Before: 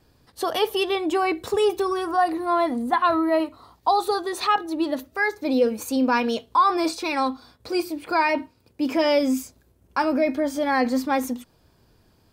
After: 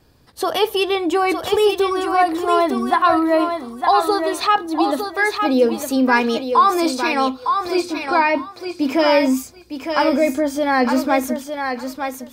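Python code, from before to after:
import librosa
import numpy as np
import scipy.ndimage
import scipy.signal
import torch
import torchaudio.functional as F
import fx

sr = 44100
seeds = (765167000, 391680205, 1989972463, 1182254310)

p1 = fx.lowpass(x, sr, hz=4400.0, slope=12, at=(7.74, 8.36))
p2 = p1 + fx.echo_thinned(p1, sr, ms=908, feedback_pct=19, hz=410.0, wet_db=-5, dry=0)
y = F.gain(torch.from_numpy(p2), 4.5).numpy()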